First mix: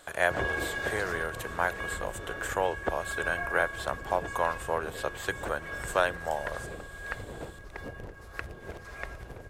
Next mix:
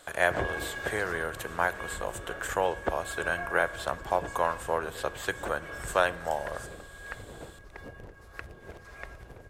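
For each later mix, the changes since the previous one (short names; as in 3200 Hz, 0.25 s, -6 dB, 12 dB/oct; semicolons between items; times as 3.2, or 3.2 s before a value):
background -4.0 dB; reverb: on, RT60 1.1 s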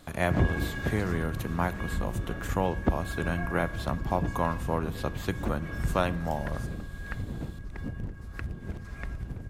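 speech: add thirty-one-band EQ 1600 Hz -10 dB, 3150 Hz -4 dB, 8000 Hz -11 dB; master: add resonant low shelf 330 Hz +12 dB, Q 1.5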